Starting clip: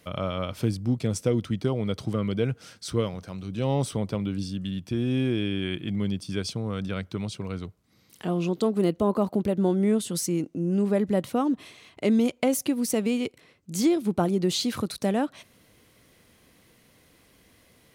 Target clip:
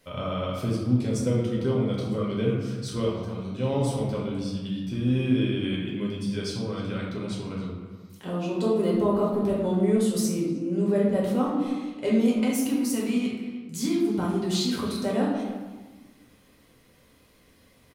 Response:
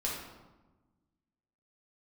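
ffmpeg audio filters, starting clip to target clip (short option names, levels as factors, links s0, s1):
-filter_complex "[0:a]asettb=1/sr,asplit=3[s0][s1][s2];[s0]atrim=end=12.354[s3];[s1]atrim=start=12.35:end=14.69,asetpts=PTS-STARTPTS,afade=t=in:d=0.004:c=qsin,afade=t=out:st=2.336:d=0.004:c=qsin,equalizer=f=560:t=o:w=0.73:g=-11.5[s4];[s2]atrim=start=14.686[s5];[s3][s4]acrossfade=d=0.004:c1=hsin:c2=qsin[s6];[s6][s5]acrossfade=d=0.004:c1=qsin:c2=hsin,asplit=2[s7][s8];[s8]adelay=310,highpass=300,lowpass=3400,asoftclip=type=hard:threshold=0.1,volume=0.2[s9];[s7][s9]amix=inputs=2:normalize=0[s10];[1:a]atrim=start_sample=2205[s11];[s10][s11]afir=irnorm=-1:irlink=0,volume=0.596"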